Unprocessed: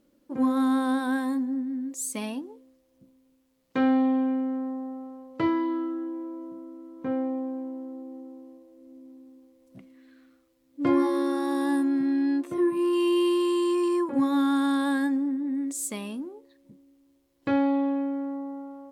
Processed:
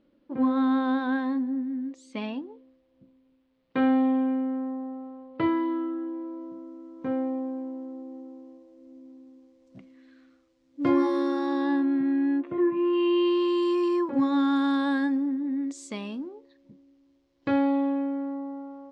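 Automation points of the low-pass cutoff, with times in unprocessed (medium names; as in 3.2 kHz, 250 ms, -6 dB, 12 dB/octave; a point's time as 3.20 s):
low-pass 24 dB/octave
5.85 s 3.9 kHz
6.69 s 6.9 kHz
11.20 s 6.9 kHz
12.17 s 2.8 kHz
12.82 s 2.8 kHz
13.66 s 5.7 kHz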